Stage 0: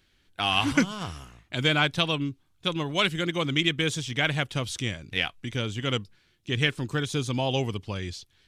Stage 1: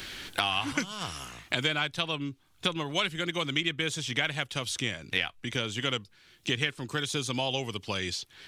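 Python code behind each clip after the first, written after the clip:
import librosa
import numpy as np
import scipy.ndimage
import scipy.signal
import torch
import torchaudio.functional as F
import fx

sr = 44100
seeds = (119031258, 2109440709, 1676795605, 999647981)

y = fx.low_shelf(x, sr, hz=410.0, db=-7.5)
y = fx.band_squash(y, sr, depth_pct=100)
y = y * 10.0 ** (-2.5 / 20.0)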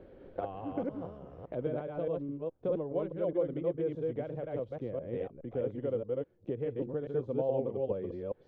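y = fx.reverse_delay(x, sr, ms=208, wet_db=-1)
y = fx.lowpass_res(y, sr, hz=520.0, q=4.9)
y = y * 10.0 ** (-7.5 / 20.0)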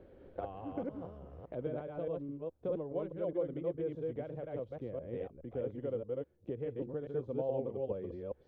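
y = fx.peak_eq(x, sr, hz=73.0, db=11.5, octaves=0.24)
y = y * 10.0 ** (-4.0 / 20.0)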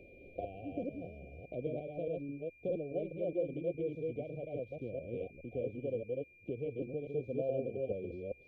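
y = x + 10.0 ** (-60.0 / 20.0) * np.sin(2.0 * np.pi * 2400.0 * np.arange(len(x)) / sr)
y = fx.brickwall_bandstop(y, sr, low_hz=760.0, high_hz=2200.0)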